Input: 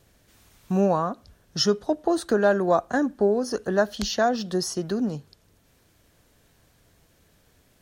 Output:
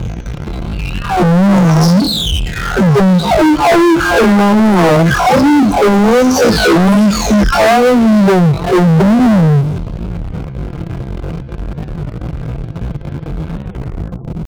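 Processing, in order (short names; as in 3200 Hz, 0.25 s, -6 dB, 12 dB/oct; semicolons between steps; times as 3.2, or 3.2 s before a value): spectral delay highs early, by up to 0.92 s; RIAA curve playback; compressor 16:1, threshold -22 dBFS, peak gain reduction 11 dB; tempo 0.54×; low-pass opened by the level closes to 2200 Hz, open at -27.5 dBFS; low shelf 270 Hz +4 dB; power-law curve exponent 0.5; HPF 50 Hz 12 dB/oct; notch 1800 Hz, Q 6.6; sine folder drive 5 dB, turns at -13 dBFS; record warp 33 1/3 rpm, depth 160 cents; gain +7 dB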